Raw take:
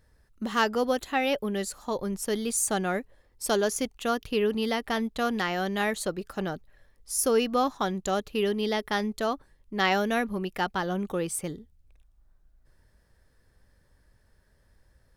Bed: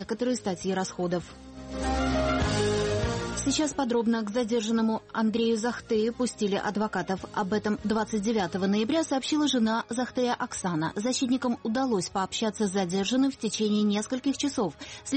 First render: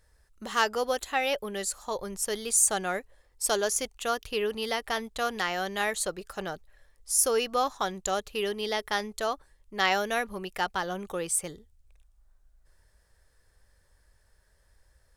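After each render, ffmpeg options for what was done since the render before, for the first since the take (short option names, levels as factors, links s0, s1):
-af "equalizer=f=125:t=o:w=1:g=-6,equalizer=f=250:t=o:w=1:g=-10,equalizer=f=8000:t=o:w=1:g=6"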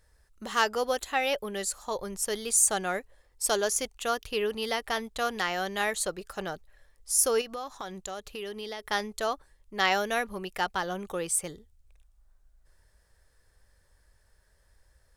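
-filter_complex "[0:a]asettb=1/sr,asplit=3[s0][s1][s2];[s0]atrim=end=7.414[s3];[s1]atrim=start=7.41:end=8.87,asetpts=PTS-STARTPTS,afade=t=in:d=0.004:c=qsin,afade=t=out:st=1.456:d=0.004:c=qsin,acompressor=threshold=0.0158:ratio=3:attack=3.2:release=140:knee=1:detection=peak[s4];[s2]atrim=start=8.866[s5];[s3][s4]acrossfade=d=0.004:c1=hsin:c2=qsin[s6];[s6][s5]acrossfade=d=0.004:c1=qsin:c2=hsin"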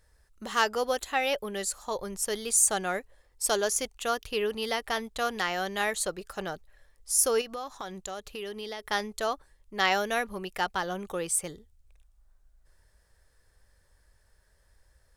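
-af anull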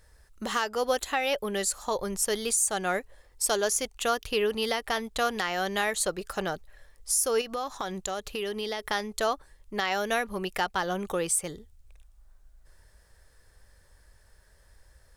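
-filter_complex "[0:a]asplit=2[s0][s1];[s1]acompressor=threshold=0.0178:ratio=6,volume=1[s2];[s0][s2]amix=inputs=2:normalize=0,alimiter=limit=0.188:level=0:latency=1:release=280"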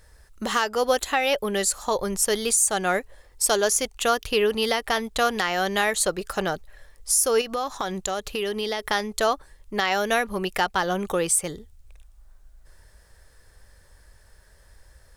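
-af "volume=1.78"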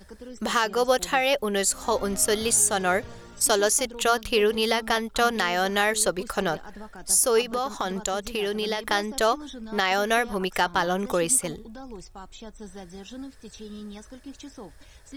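-filter_complex "[1:a]volume=0.188[s0];[0:a][s0]amix=inputs=2:normalize=0"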